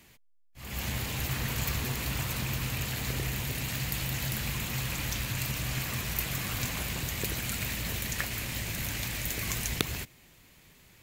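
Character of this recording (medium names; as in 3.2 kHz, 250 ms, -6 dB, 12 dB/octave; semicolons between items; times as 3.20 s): noise floor -59 dBFS; spectral tilt -3.0 dB/octave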